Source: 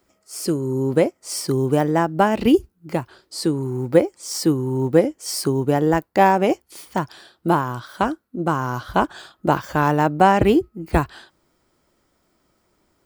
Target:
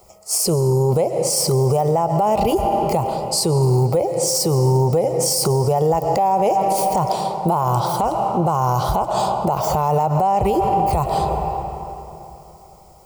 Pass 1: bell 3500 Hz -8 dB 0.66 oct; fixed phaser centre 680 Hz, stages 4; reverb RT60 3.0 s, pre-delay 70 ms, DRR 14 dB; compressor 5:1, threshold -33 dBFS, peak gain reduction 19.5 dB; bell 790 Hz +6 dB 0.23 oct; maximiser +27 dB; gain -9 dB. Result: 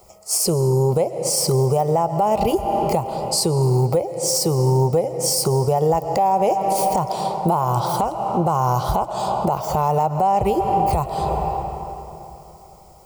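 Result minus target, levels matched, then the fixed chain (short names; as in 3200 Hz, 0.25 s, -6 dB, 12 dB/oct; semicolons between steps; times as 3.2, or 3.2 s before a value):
compressor: peak gain reduction +6.5 dB
bell 3500 Hz -8 dB 0.66 oct; fixed phaser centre 680 Hz, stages 4; reverb RT60 3.0 s, pre-delay 70 ms, DRR 14 dB; compressor 5:1, threshold -25 dBFS, peak gain reduction 13 dB; bell 790 Hz +6 dB 0.23 oct; maximiser +27 dB; gain -9 dB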